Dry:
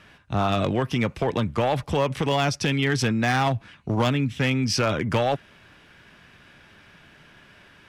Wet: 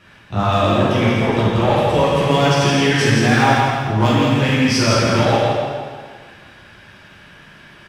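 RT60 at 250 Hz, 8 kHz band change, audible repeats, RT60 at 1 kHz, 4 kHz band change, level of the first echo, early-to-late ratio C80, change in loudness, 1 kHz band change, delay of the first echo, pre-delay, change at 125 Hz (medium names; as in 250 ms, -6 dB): 1.5 s, +8.0 dB, 1, 1.7 s, +8.5 dB, -3.0 dB, -2.0 dB, +8.5 dB, +9.0 dB, 165 ms, 6 ms, +8.0 dB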